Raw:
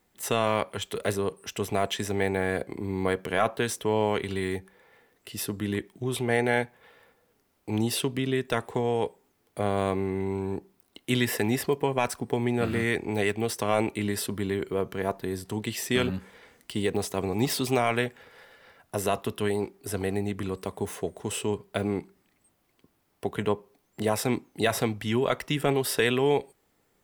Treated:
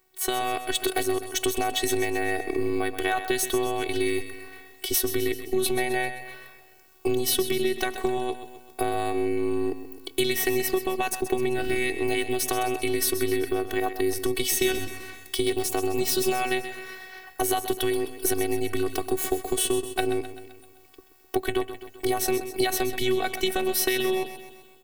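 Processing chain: level rider gain up to 10.5 dB; treble shelf 8.8 kHz +5 dB; compression, threshold -22 dBFS, peak gain reduction 12 dB; dynamic bell 980 Hz, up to -6 dB, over -41 dBFS, Q 1.5; robot voice 345 Hz; on a send: feedback delay 141 ms, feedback 54%, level -11 dB; on the sum: speed mistake 44.1 kHz file played as 48 kHz; trim +4 dB

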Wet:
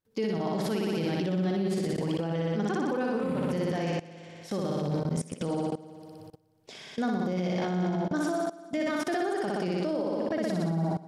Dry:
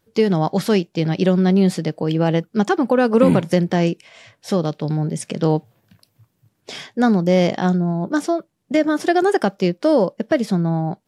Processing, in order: on a send: flutter echo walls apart 10.4 m, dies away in 1.5 s; on the sum: level held to a coarse grid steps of 22 dB; peak limiter -19.5 dBFS, peak gain reduction 9 dB; trim -2 dB

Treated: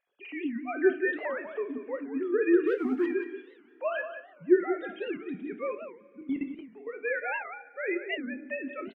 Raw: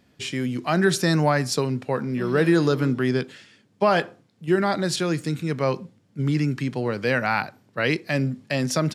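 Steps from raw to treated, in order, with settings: formants replaced by sine waves; dynamic bell 2.2 kHz, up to +6 dB, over -41 dBFS, Q 1.6; harmonic-percussive split percussive -5 dB; peaking EQ 1 kHz -3 dB 0.77 oct; 2.66–3.06 s: waveshaping leveller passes 1; 6.21–6.87 s: level held to a coarse grid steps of 20 dB; 7.92–8.64 s: comb of notches 790 Hz; delay 182 ms -10 dB; two-slope reverb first 0.41 s, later 2.7 s, from -18 dB, DRR 7.5 dB; warped record 78 rpm, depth 250 cents; trim -8.5 dB

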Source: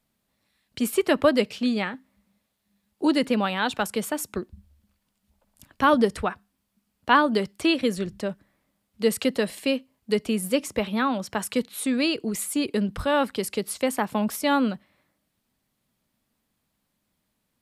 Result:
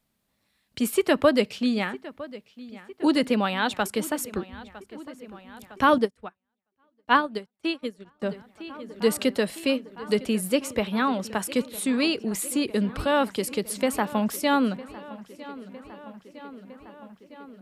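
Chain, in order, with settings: filtered feedback delay 957 ms, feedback 73%, low-pass 4.5 kHz, level -18 dB; 5.98–8.22 s: upward expansion 2.5:1, over -38 dBFS

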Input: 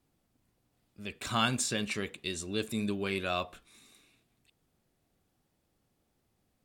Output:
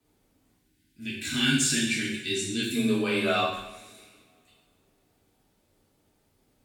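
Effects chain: time-frequency box 0.56–2.76 s, 380–1400 Hz -19 dB; frequency shift +18 Hz; two-slope reverb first 0.8 s, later 2.9 s, from -27 dB, DRR -7 dB

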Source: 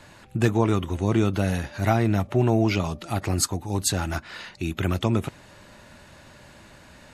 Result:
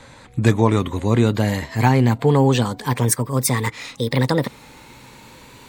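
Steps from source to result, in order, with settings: gliding tape speed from 91% -> 160%; rippled EQ curve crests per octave 1, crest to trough 6 dB; trim +4.5 dB

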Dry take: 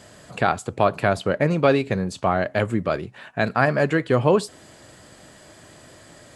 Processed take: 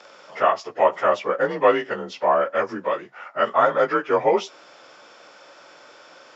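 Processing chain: frequency axis rescaled in octaves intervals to 89%; high-pass 650 Hz 12 dB/octave; treble shelf 2.7 kHz -10.5 dB; trim +8.5 dB

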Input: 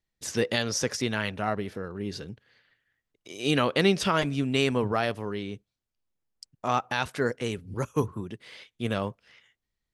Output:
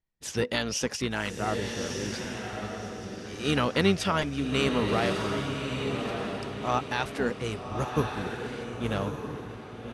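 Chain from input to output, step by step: echo that smears into a reverb 1195 ms, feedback 41%, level -4.5 dB; harmony voices -12 st -9 dB; tape noise reduction on one side only decoder only; trim -2 dB

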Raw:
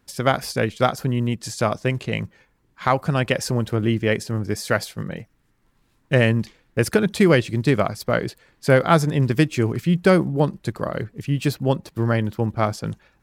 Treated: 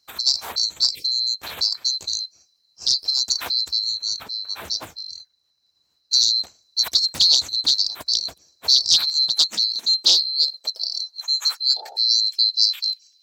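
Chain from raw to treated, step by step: split-band scrambler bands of 4 kHz; 0.90–1.14 s: spectral selection erased 540–2000 Hz; 3.84–6.13 s: peaking EQ 12 kHz -6.5 dB 2.8 oct; 11.76–11.97 s: painted sound noise 340–900 Hz -24 dBFS; high-pass sweep 67 Hz -> 2.9 kHz, 8.47–12.39 s; loudspeaker Doppler distortion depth 0.61 ms; trim -1 dB

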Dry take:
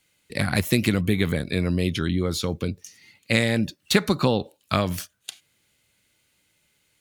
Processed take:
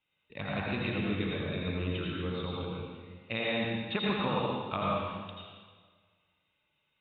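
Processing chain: rippled Chebyshev low-pass 3.8 kHz, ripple 9 dB; reverberation RT60 1.6 s, pre-delay 74 ms, DRR -4.5 dB; trim -7.5 dB

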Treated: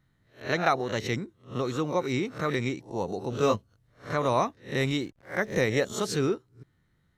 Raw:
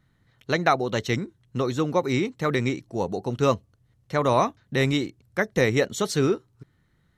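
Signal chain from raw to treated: reverse spectral sustain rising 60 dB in 0.31 s; 3.30–4.15 s: doubling 19 ms -2.5 dB; 5.01–5.57 s: hysteresis with a dead band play -46 dBFS; trim -5 dB

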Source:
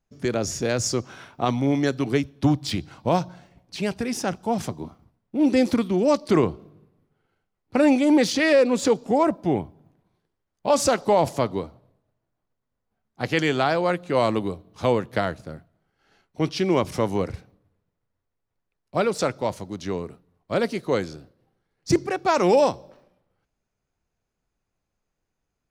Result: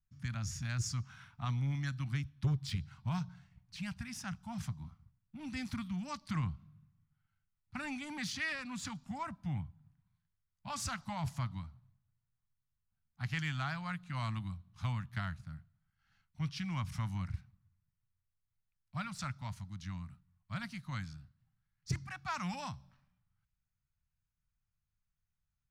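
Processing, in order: Chebyshev band-stop 130–1400 Hz, order 2; tilt shelf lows +5 dB, about 840 Hz; saturation -16 dBFS, distortion -21 dB; trim -8 dB

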